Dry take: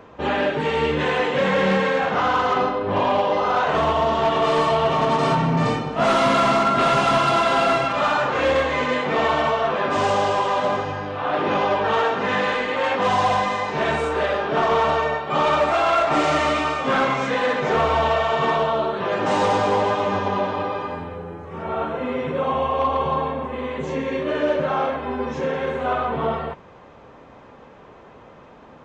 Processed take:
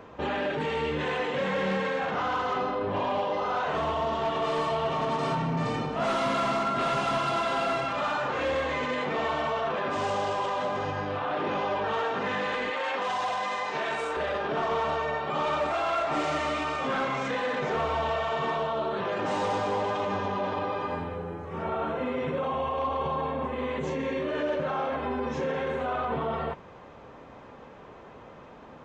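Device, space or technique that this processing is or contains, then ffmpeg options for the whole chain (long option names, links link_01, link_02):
stacked limiters: -filter_complex "[0:a]asettb=1/sr,asplit=3[link_01][link_02][link_03];[link_01]atrim=end=12.704[link_04];[link_02]atrim=start=12.7:end=14.17,asetpts=PTS-STARTPTS,afade=type=in:duration=0.004:curve=qsin,afade=type=out:start_time=1.466:duration=0.004:curve=qsin,highpass=frequency=590:poles=1[link_05];[link_03]atrim=start=14.166[link_06];[link_04][link_05]acrossfade=duration=0.004:curve1=hsin:curve2=qsin[link_07];[link_07][link_06]acrossfade=duration=0.004:curve1=qsin:curve2=hsin,alimiter=limit=-17dB:level=0:latency=1:release=16,alimiter=limit=-20dB:level=0:latency=1:release=73,volume=-2dB"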